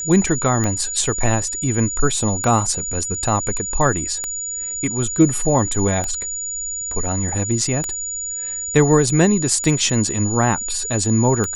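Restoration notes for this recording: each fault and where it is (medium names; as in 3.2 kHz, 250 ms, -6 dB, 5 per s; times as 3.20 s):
tick 33 1/3 rpm -9 dBFS
whine 6.9 kHz -24 dBFS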